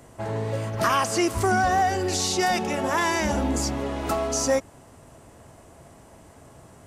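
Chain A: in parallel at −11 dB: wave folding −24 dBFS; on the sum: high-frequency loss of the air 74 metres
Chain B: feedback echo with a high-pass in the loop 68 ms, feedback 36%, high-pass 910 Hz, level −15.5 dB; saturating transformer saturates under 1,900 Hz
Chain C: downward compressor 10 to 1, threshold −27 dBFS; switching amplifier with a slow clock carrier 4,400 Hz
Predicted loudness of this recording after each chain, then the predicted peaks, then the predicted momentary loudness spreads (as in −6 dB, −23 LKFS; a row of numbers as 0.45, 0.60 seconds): −24.0, −28.5, −32.5 LKFS; −11.5, −11.5, −19.0 dBFS; 5, 9, 8 LU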